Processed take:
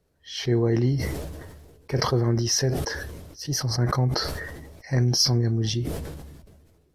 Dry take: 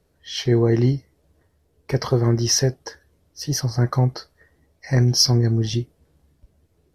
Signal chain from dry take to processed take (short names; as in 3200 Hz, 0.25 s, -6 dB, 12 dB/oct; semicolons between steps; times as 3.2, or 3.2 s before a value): sustainer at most 36 dB/s; gain -5 dB